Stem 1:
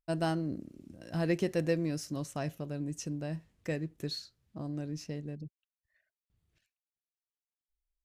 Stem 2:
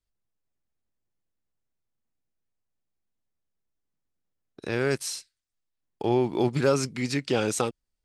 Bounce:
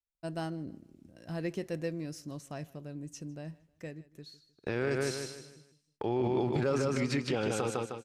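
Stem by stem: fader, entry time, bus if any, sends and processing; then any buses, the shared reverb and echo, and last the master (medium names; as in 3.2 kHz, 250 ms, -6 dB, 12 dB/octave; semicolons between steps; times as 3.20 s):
-5.5 dB, 0.15 s, no send, echo send -23.5 dB, auto duck -12 dB, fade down 1.05 s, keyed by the second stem
0.0 dB, 0.00 s, no send, echo send -5.5 dB, gate -38 dBFS, range -18 dB; treble shelf 5.1 kHz -12 dB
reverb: none
echo: feedback delay 154 ms, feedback 35%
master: peak limiter -21 dBFS, peak gain reduction 10 dB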